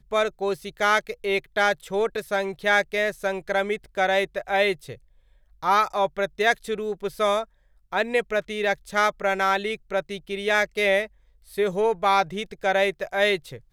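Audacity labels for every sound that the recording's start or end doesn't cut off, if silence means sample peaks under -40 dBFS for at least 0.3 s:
5.630000	7.440000	sound
7.930000	11.060000	sound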